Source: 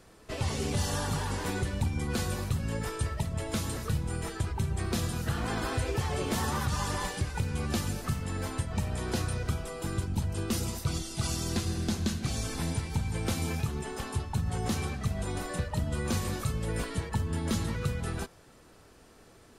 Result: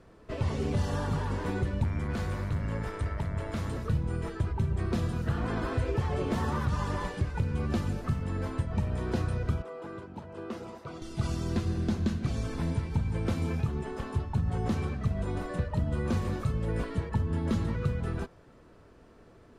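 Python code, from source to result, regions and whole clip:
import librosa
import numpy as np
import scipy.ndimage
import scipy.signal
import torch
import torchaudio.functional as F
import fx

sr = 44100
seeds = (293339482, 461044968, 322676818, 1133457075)

y = fx.clip_hard(x, sr, threshold_db=-26.5, at=(1.83, 3.7), fade=0.02)
y = fx.peak_eq(y, sr, hz=340.0, db=-4.5, octaves=1.5, at=(1.83, 3.7), fade=0.02)
y = fx.dmg_buzz(y, sr, base_hz=100.0, harmonics=23, level_db=-45.0, tilt_db=-1, odd_only=False, at=(1.83, 3.7), fade=0.02)
y = fx.chain(y, sr, fx.highpass(hz=640.0, slope=12),
    fx.tilt_eq(slope=-4.0), at=(9.62, 11.02))
y = fx.lowpass(y, sr, hz=1200.0, slope=6)
y = fx.notch(y, sr, hz=790.0, q=12.0)
y = y * 10.0 ** (2.0 / 20.0)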